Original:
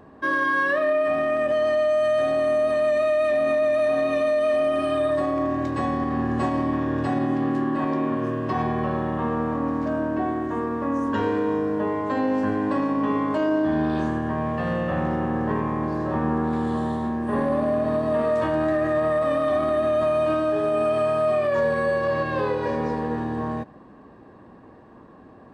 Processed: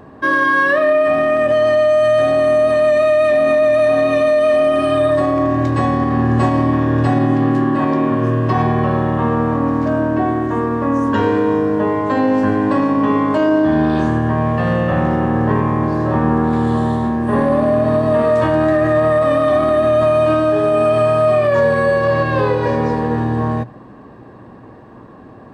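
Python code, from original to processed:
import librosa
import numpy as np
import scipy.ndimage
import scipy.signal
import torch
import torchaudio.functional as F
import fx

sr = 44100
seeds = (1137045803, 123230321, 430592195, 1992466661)

y = fx.peak_eq(x, sr, hz=120.0, db=9.0, octaves=0.26)
y = y * 10.0 ** (8.0 / 20.0)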